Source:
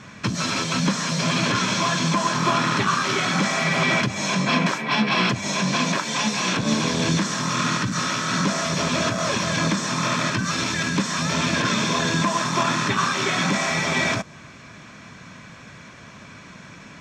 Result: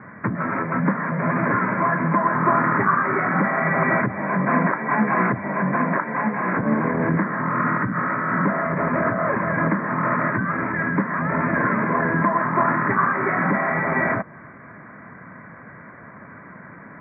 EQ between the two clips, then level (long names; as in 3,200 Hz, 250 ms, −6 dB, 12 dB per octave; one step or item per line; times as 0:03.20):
high-pass filter 170 Hz 6 dB per octave
Butterworth low-pass 2,100 Hz 96 dB per octave
+3.5 dB